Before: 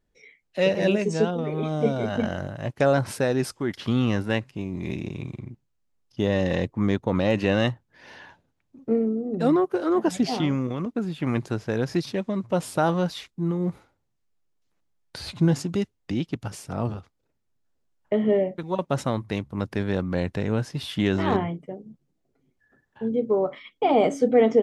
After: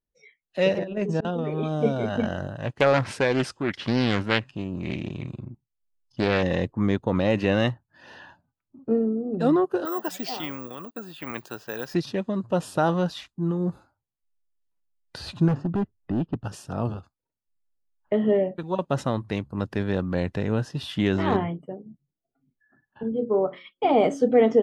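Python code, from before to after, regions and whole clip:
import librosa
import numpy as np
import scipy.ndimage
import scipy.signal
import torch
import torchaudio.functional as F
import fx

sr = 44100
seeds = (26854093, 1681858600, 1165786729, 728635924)

y = fx.chain(x, sr, fx.lowpass(hz=1500.0, slope=6),
    fx.auto_swell(attack_ms=398.0),
    fx.over_compress(threshold_db=-26.0, ratio=-0.5), at=(0.78, 1.25))
y = fx.chain(y, sr, fx.lowpass(hz=10000.0, slope=24),
    fx.dynamic_eq(hz=2400.0, q=0.93, threshold_db=-43.0, ratio=4.0, max_db=8),
    fx.doppler_dist(depth_ms=0.46), at=(2.58, 6.43))
y = fx.chain(y, sr, fx.highpass(hz=950.0, slope=6),
    fx.resample_bad(factor=2, down='none', up='zero_stuff'), at=(9.85, 11.94))
y = fx.chain(y, sr, fx.lowpass(hz=1500.0, slope=12),
    fx.low_shelf(hz=330.0, db=4.5),
    fx.clip_hard(threshold_db=-20.5), at=(15.48, 16.44))
y = fx.chain(y, sr, fx.hum_notches(base_hz=60, count=9),
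    fx.band_widen(depth_pct=40), at=(23.03, 23.85))
y = fx.noise_reduce_blind(y, sr, reduce_db=16)
y = fx.high_shelf(y, sr, hz=8500.0, db=-8.5)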